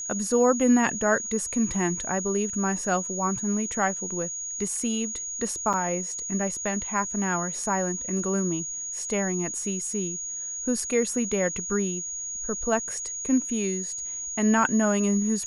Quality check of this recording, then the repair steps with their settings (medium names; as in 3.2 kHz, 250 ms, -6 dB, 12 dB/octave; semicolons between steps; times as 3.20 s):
whine 6.7 kHz -31 dBFS
5.73–5.74 s: dropout 6.5 ms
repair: band-stop 6.7 kHz, Q 30; interpolate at 5.73 s, 6.5 ms